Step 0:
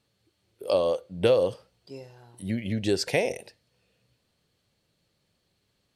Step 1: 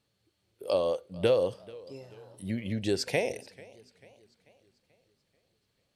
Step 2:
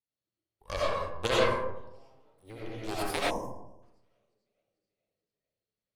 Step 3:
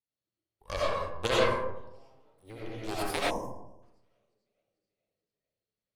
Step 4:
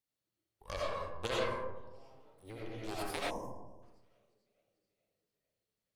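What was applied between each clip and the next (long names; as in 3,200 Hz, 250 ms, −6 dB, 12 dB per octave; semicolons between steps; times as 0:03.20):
feedback echo with a swinging delay time 439 ms, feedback 48%, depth 128 cents, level −22 dB; level −3.5 dB
harmonic generator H 3 −10 dB, 8 −23 dB, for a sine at −11.5 dBFS; comb and all-pass reverb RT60 0.9 s, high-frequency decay 0.4×, pre-delay 45 ms, DRR −7 dB; gain on a spectral selection 0:03.30–0:03.82, 1,100–5,100 Hz −22 dB
no processing that can be heard
downward compressor 1.5 to 1, threshold −53 dBFS, peak gain reduction 12 dB; level +2 dB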